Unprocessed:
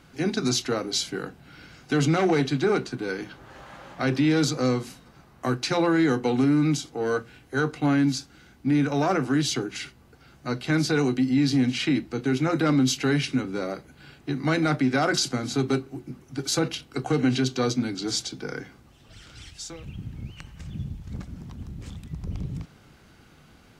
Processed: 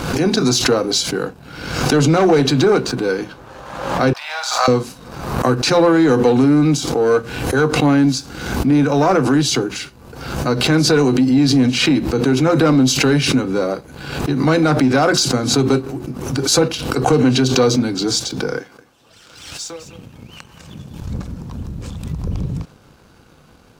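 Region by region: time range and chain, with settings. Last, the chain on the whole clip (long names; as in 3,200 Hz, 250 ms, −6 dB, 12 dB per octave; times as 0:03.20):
0:04.13–0:04.68: Chebyshev high-pass filter 650 Hz, order 6 + high-shelf EQ 4,300 Hz −9 dB + flutter between parallel walls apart 8.3 metres, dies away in 0.36 s
0:18.58–0:21.02: high-pass filter 430 Hz 6 dB per octave + single-tap delay 206 ms −12 dB
whole clip: thirty-one-band graphic EQ 500 Hz +6 dB, 1,000 Hz +4 dB, 2,000 Hz −7 dB, 3,150 Hz −3 dB; leveller curve on the samples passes 1; background raised ahead of every attack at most 55 dB per second; level +5 dB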